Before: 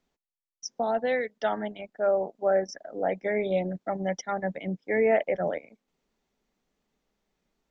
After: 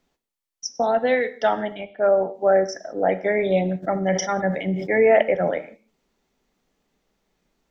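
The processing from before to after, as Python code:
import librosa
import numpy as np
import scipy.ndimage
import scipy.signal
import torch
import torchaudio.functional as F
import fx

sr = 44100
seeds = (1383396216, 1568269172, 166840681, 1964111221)

y = fx.steep_lowpass(x, sr, hz=4300.0, slope=36, at=(1.75, 2.34))
y = fx.rev_gated(y, sr, seeds[0], gate_ms=210, shape='falling', drr_db=10.5)
y = fx.sustainer(y, sr, db_per_s=70.0, at=(3.82, 5.21), fade=0.02)
y = y * librosa.db_to_amplitude(6.5)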